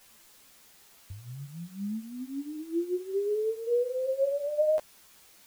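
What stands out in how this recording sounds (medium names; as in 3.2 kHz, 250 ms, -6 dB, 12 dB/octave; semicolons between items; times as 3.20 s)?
tremolo triangle 2.2 Hz, depth 50%; a quantiser's noise floor 10-bit, dither triangular; a shimmering, thickened sound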